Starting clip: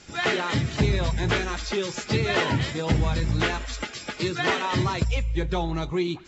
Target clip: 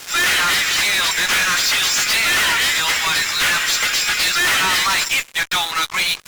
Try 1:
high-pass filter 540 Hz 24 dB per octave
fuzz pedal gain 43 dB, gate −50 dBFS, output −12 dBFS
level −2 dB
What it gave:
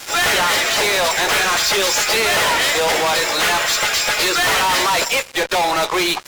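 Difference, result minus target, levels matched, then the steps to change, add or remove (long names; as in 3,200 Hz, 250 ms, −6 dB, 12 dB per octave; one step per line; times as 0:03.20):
500 Hz band +13.5 dB
change: high-pass filter 1,300 Hz 24 dB per octave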